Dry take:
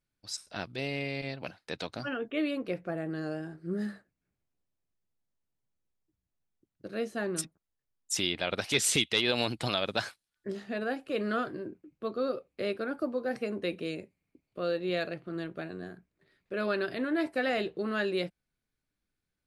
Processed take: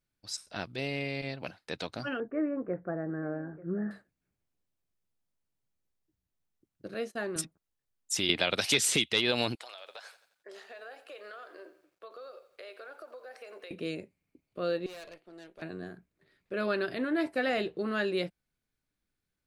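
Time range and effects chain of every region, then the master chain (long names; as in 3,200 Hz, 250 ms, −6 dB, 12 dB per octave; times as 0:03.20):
0:02.20–0:03.91: Butterworth low-pass 1,800 Hz 48 dB per octave + single-tap delay 887 ms −19 dB
0:06.94–0:07.36: high-pass filter 320 Hz 6 dB per octave + noise gate −49 dBFS, range −20 dB
0:08.29–0:09.04: low-shelf EQ 71 Hz −9 dB + multiband upward and downward compressor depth 100%
0:09.55–0:13.71: high-pass filter 520 Hz 24 dB per octave + downward compressor 8 to 1, threshold −43 dBFS + feedback echo at a low word length 87 ms, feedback 55%, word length 11 bits, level −14 dB
0:14.86–0:15.62: high-pass filter 590 Hz + parametric band 1,200 Hz −11.5 dB 1.1 octaves + tube saturation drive 43 dB, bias 0.5
whole clip: no processing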